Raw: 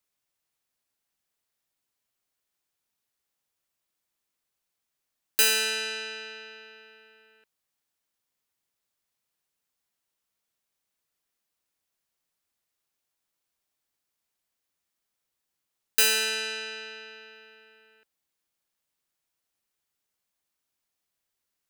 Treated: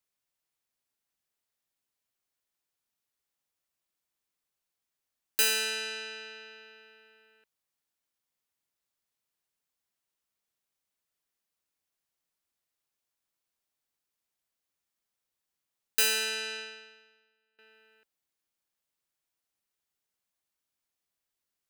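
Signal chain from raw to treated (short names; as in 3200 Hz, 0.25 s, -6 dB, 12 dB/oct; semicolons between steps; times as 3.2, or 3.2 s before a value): 16.57–17.59 upward expander 2.5:1, over -51 dBFS; gain -4 dB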